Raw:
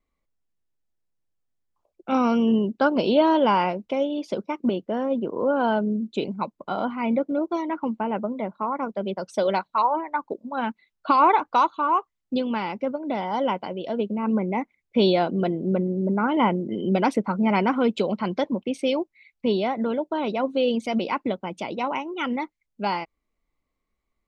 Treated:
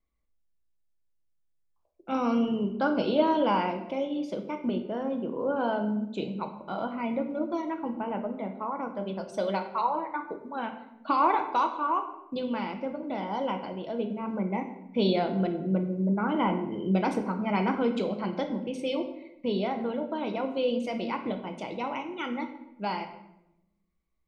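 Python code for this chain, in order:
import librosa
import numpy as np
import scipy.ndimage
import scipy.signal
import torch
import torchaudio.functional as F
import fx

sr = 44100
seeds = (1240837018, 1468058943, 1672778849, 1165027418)

y = fx.peak_eq(x, sr, hz=63.0, db=7.5, octaves=0.85)
y = fx.room_shoebox(y, sr, seeds[0], volume_m3=290.0, walls='mixed', distance_m=0.66)
y = y * 10.0 ** (-7.0 / 20.0)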